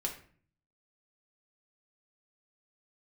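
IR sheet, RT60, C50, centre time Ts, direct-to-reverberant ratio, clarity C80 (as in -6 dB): 0.45 s, 9.0 dB, 17 ms, 0.0 dB, 13.5 dB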